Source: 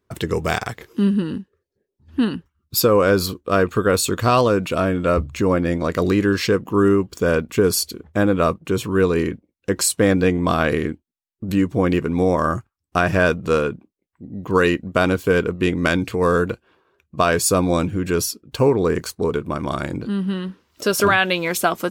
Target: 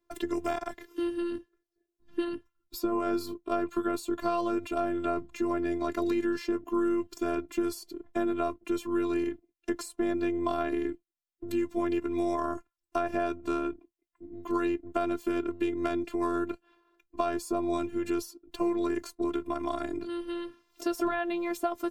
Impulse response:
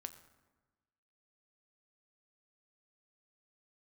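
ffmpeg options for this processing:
-filter_complex "[0:a]afftfilt=real='hypot(re,im)*cos(PI*b)':imag='0':win_size=512:overlap=0.75,acrossover=split=89|1200[link_01][link_02][link_03];[link_01]acompressor=threshold=-43dB:ratio=4[link_04];[link_02]acompressor=threshold=-24dB:ratio=4[link_05];[link_03]acompressor=threshold=-41dB:ratio=4[link_06];[link_04][link_05][link_06]amix=inputs=3:normalize=0,volume=-2.5dB"

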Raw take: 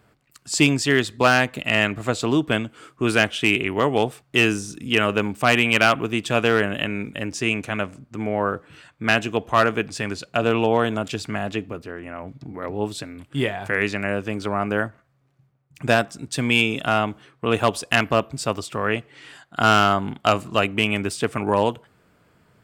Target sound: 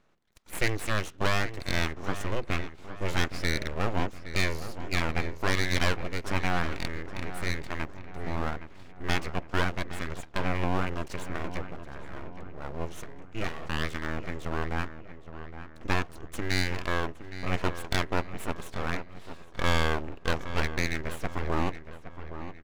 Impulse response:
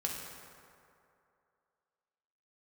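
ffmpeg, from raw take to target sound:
-filter_complex "[0:a]lowpass=7900,asetrate=35002,aresample=44100,atempo=1.25992,aeval=exprs='abs(val(0))':channel_layout=same,asplit=2[link_01][link_02];[link_02]adelay=816,lowpass=frequency=2700:poles=1,volume=-11.5dB,asplit=2[link_03][link_04];[link_04]adelay=816,lowpass=frequency=2700:poles=1,volume=0.48,asplit=2[link_05][link_06];[link_06]adelay=816,lowpass=frequency=2700:poles=1,volume=0.48,asplit=2[link_07][link_08];[link_08]adelay=816,lowpass=frequency=2700:poles=1,volume=0.48,asplit=2[link_09][link_10];[link_10]adelay=816,lowpass=frequency=2700:poles=1,volume=0.48[link_11];[link_01][link_03][link_05][link_07][link_09][link_11]amix=inputs=6:normalize=0,volume=-7dB"

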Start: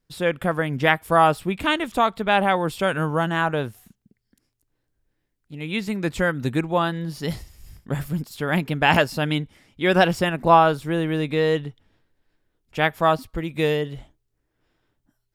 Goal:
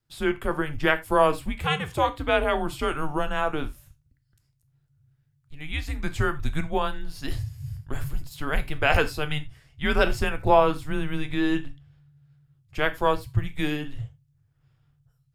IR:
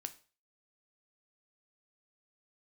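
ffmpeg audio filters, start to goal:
-filter_complex "[0:a]asubboost=boost=4.5:cutoff=130,afreqshift=-150[link_01];[1:a]atrim=start_sample=2205,atrim=end_sample=4410[link_02];[link_01][link_02]afir=irnorm=-1:irlink=0"

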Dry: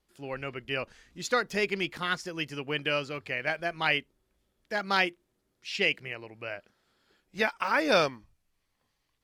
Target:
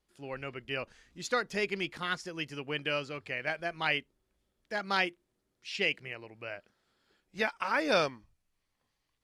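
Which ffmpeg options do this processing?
ffmpeg -i in.wav -af "lowpass=frequency=12000:width=0.5412,lowpass=frequency=12000:width=1.3066,volume=-3.5dB" out.wav

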